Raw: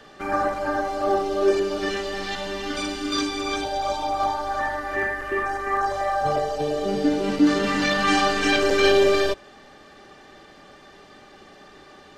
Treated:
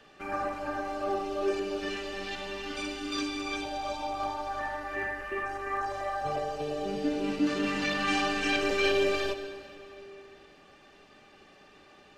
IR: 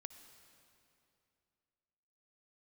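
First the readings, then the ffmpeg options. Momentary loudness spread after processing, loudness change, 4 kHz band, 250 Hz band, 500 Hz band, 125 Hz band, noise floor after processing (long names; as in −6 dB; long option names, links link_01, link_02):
9 LU, −8.5 dB, −7.5 dB, −8.0 dB, −9.0 dB, −8.5 dB, −57 dBFS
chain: -filter_complex "[0:a]equalizer=frequency=2600:width=5.7:gain=10[link_01];[1:a]atrim=start_sample=2205[link_02];[link_01][link_02]afir=irnorm=-1:irlink=0,volume=-3.5dB"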